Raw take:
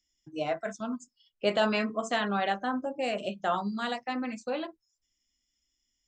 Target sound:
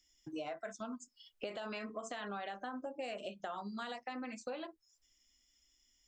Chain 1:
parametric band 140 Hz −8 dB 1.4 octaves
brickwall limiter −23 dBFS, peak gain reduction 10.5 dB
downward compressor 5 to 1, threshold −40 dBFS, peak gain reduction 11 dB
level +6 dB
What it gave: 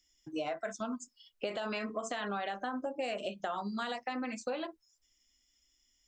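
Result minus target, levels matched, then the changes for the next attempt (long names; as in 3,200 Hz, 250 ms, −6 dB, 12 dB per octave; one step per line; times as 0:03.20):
downward compressor: peak gain reduction −6 dB
change: downward compressor 5 to 1, threshold −47.5 dBFS, peak gain reduction 17 dB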